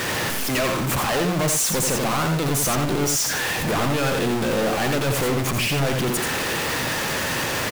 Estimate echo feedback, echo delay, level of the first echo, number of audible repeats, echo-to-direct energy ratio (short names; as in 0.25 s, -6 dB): no steady repeat, 86 ms, -5.0 dB, 1, -5.0 dB